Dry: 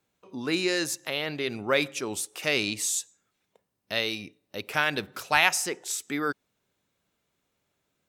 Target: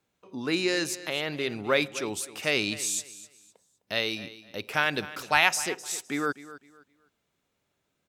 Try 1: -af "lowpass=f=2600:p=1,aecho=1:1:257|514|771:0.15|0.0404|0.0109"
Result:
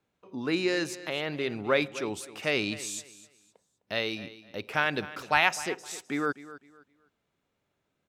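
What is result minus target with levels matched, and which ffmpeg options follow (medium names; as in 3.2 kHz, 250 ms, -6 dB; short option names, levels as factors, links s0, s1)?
8 kHz band -5.5 dB
-af "lowpass=f=9800:p=1,aecho=1:1:257|514|771:0.15|0.0404|0.0109"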